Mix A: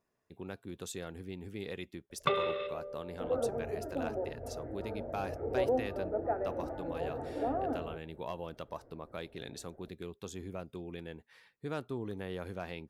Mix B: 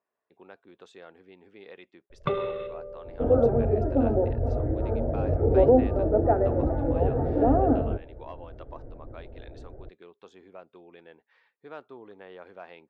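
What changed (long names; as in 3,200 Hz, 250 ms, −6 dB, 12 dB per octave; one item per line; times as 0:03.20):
speech: add band-pass filter 710–4,000 Hz
second sound +8.0 dB
master: add spectral tilt −3.5 dB per octave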